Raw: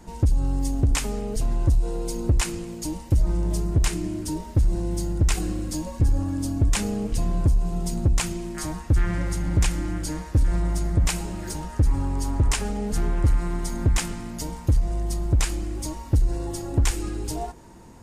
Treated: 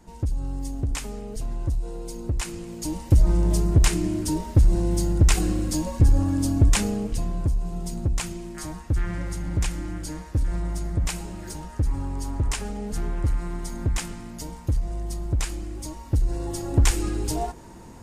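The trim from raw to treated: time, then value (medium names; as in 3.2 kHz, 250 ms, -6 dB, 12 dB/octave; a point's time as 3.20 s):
2.36 s -6 dB
3.13 s +3.5 dB
6.66 s +3.5 dB
7.34 s -4 dB
15.92 s -4 dB
16.89 s +3 dB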